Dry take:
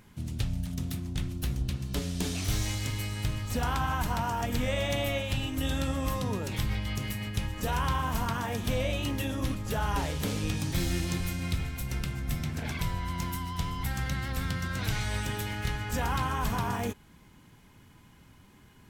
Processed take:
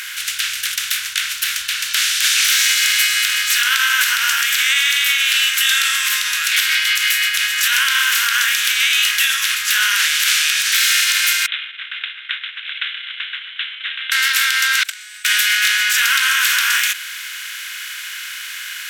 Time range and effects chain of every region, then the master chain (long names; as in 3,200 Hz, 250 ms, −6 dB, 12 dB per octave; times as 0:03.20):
0:11.46–0:14.12: downward expander −26 dBFS + four-pole ladder high-pass 2,600 Hz, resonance 35% + bad sample-rate conversion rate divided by 6×, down none, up filtered
0:14.83–0:15.25: parametric band 8,000 Hz +12 dB 0.29 octaves + noise gate −24 dBFS, range −39 dB
whole clip: compressor on every frequency bin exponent 0.6; elliptic high-pass filter 1,500 Hz, stop band 50 dB; boost into a limiter +24.5 dB; level −3.5 dB